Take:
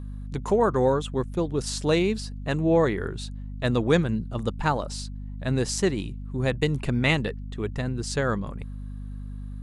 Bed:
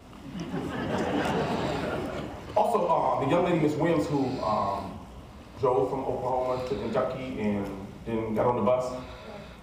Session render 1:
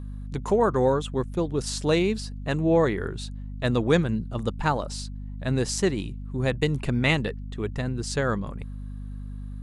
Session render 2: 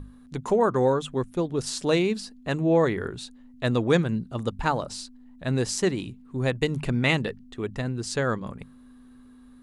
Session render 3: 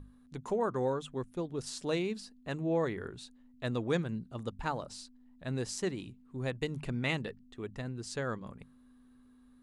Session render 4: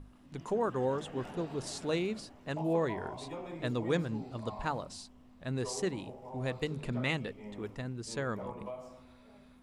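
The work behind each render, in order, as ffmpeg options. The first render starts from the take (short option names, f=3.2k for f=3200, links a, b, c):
-af anull
-af "bandreject=f=50:t=h:w=6,bandreject=f=100:t=h:w=6,bandreject=f=150:t=h:w=6,bandreject=f=200:t=h:w=6"
-af "volume=-10dB"
-filter_complex "[1:a]volume=-18.5dB[a];[0:a][a]amix=inputs=2:normalize=0"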